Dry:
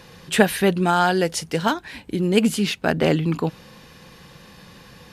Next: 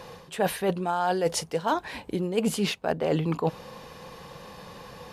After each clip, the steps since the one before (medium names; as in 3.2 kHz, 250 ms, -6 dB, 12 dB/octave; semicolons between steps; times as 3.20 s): high-order bell 700 Hz +8 dB; reverse; compression 16:1, threshold -20 dBFS, peak gain reduction 17 dB; reverse; trim -1.5 dB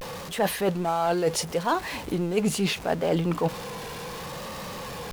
jump at every zero crossing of -34 dBFS; vibrato 0.71 Hz 95 cents